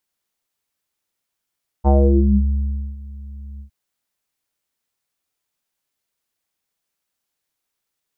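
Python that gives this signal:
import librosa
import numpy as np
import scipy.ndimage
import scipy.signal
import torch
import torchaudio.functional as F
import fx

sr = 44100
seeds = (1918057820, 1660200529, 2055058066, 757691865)

y = fx.sub_voice(sr, note=37, wave='square', cutoff_hz=160.0, q=3.9, env_oct=2.5, env_s=0.6, attack_ms=33.0, decay_s=1.09, sustain_db=-22.0, release_s=0.1, note_s=1.76, slope=24)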